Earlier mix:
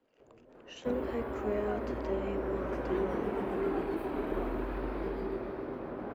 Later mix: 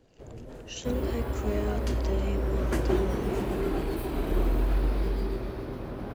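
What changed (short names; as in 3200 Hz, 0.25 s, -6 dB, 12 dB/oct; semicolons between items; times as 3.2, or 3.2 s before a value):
first sound +11.5 dB; master: remove three-band isolator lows -15 dB, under 210 Hz, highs -17 dB, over 2400 Hz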